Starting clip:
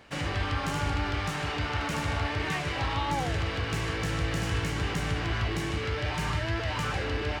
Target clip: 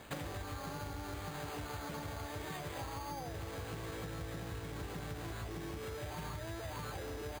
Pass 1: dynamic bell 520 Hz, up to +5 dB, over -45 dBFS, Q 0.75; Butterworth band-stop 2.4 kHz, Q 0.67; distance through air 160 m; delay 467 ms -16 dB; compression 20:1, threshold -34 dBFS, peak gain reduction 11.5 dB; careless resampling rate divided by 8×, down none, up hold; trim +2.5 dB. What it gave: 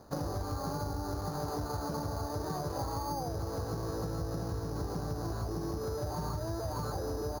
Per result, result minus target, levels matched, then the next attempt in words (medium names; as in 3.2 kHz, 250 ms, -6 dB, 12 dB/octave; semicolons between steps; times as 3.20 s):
2 kHz band -11.0 dB; compression: peak gain reduction -7.5 dB
dynamic bell 520 Hz, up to +5 dB, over -45 dBFS, Q 0.75; Butterworth band-stop 9.3 kHz, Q 0.67; distance through air 160 m; delay 467 ms -16 dB; compression 20:1, threshold -34 dBFS, peak gain reduction 12 dB; careless resampling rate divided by 8×, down none, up hold; trim +2.5 dB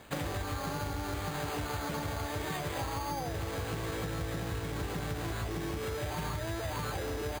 compression: peak gain reduction -7 dB
dynamic bell 520 Hz, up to +5 dB, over -45 dBFS, Q 0.75; Butterworth band-stop 9.3 kHz, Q 0.67; distance through air 160 m; delay 467 ms -16 dB; compression 20:1, threshold -41.5 dBFS, peak gain reduction 19 dB; careless resampling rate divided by 8×, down none, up hold; trim +2.5 dB